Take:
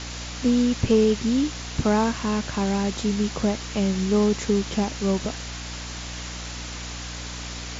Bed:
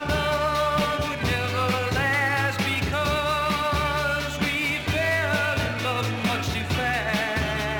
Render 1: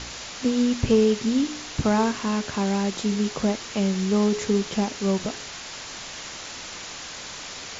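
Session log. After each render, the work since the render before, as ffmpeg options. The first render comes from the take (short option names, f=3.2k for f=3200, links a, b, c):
-af "bandreject=f=60:t=h:w=4,bandreject=f=120:t=h:w=4,bandreject=f=180:t=h:w=4,bandreject=f=240:t=h:w=4,bandreject=f=300:t=h:w=4,bandreject=f=360:t=h:w=4,bandreject=f=420:t=h:w=4"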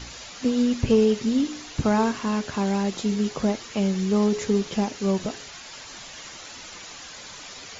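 -af "afftdn=nr=8:nf=-38"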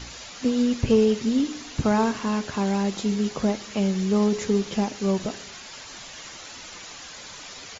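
-af "aecho=1:1:121|242|363|484:0.0708|0.0418|0.0246|0.0145"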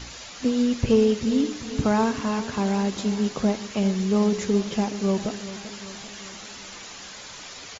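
-af "aecho=1:1:390|780|1170|1560|1950|2340:0.2|0.114|0.0648|0.037|0.0211|0.012"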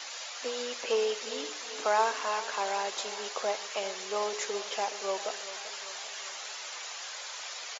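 -af "highpass=f=540:w=0.5412,highpass=f=540:w=1.3066"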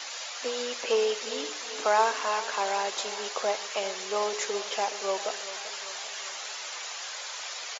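-af "volume=3dB"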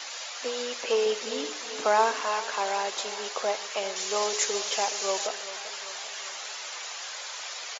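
-filter_complex "[0:a]asettb=1/sr,asplit=3[a][b][c];[a]atrim=end=1.064[d];[b]atrim=start=1.06:end=2.21,asetpts=PTS-STARTPTS,afade=t=in:d=0.004:c=qsin,afade=t=out:st=1.146:d=0.004:c=qsin,lowshelf=f=210:g=11[e];[c]atrim=start=2.206[f];[d][e]acrossfade=d=0.004:c1=hsin:c2=qsin[g];[g][f]acrossfade=d=0.004:c1=qsin:c2=hsin,asettb=1/sr,asplit=3[h][i][j];[h]atrim=end=3.964[k];[i]atrim=start=3.96:end=5.27,asetpts=PTS-STARTPTS,afade=t=in:d=0.004:c=qsin,afade=t=out:st=1.306:d=0.004:c=qsin,highshelf=f=4.9k:g=11.5[l];[j]atrim=start=5.266[m];[k][l]acrossfade=d=0.004:c1=hsin:c2=qsin[n];[n][m]acrossfade=d=0.004:c1=qsin:c2=hsin"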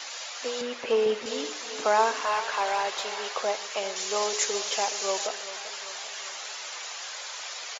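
-filter_complex "[0:a]asettb=1/sr,asplit=3[a][b][c];[a]atrim=end=0.614[d];[b]atrim=start=0.61:end=1.26,asetpts=PTS-STARTPTS,afade=t=in:d=0.004:c=qsin,afade=t=out:st=0.646:d=0.004:c=qsin,bass=f=250:g=12,treble=f=4k:g=-10[e];[c]atrim=start=1.256[f];[d][e]acrossfade=d=0.004:c1=hsin:c2=qsin[g];[g][f]acrossfade=d=0.004:c1=qsin:c2=hsin,asettb=1/sr,asplit=3[h][i][j];[h]atrim=end=2.254[k];[i]atrim=start=2.25:end=3.41,asetpts=PTS-STARTPTS,afade=t=in:d=0.004:c=qsin,afade=t=out:st=1.156:d=0.004:c=qsin,asplit=2[l][m];[m]highpass=f=720:p=1,volume=9dB,asoftclip=type=tanh:threshold=-15.5dB[n];[l][n]amix=inputs=2:normalize=0,lowpass=f=2.9k:p=1,volume=-6dB[o];[j]atrim=start=3.406[p];[k][o]acrossfade=d=0.004:c1=hsin:c2=qsin[q];[q][p]acrossfade=d=0.004:c1=qsin:c2=hsin"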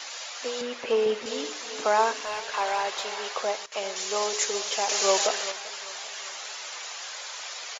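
-filter_complex "[0:a]asettb=1/sr,asplit=3[a][b][c];[a]atrim=end=2.134[d];[b]atrim=start=2.13:end=2.54,asetpts=PTS-STARTPTS,afade=t=in:d=0.004:c=qsin,afade=t=out:st=0.406:d=0.004:c=qsin,equalizer=f=1.1k:w=1.1:g=-9[e];[c]atrim=start=2.536[f];[d][e]acrossfade=d=0.004:c1=hsin:c2=qsin[g];[g][f]acrossfade=d=0.004:c1=qsin:c2=hsin,asettb=1/sr,asplit=3[h][i][j];[h]atrim=end=4.894[k];[i]atrim=start=4.89:end=5.52,asetpts=PTS-STARTPTS,afade=t=in:d=0.004:c=qsin,afade=t=out:st=0.626:d=0.004:c=qsin,acontrast=58[l];[j]atrim=start=5.516[m];[k][l]acrossfade=d=0.004:c1=hsin:c2=qsin[n];[n][m]acrossfade=d=0.004:c1=qsin:c2=hsin,asplit=3[o][p][q];[o]atrim=end=3.66,asetpts=PTS-STARTPTS,afade=t=out:st=3.41:d=0.25:c=log:silence=0.149624[r];[p]atrim=start=3.66:end=3.72,asetpts=PTS-STARTPTS,volume=-16.5dB[s];[q]atrim=start=3.72,asetpts=PTS-STARTPTS,afade=t=in:d=0.25:c=log:silence=0.149624[t];[r][s][t]concat=n=3:v=0:a=1"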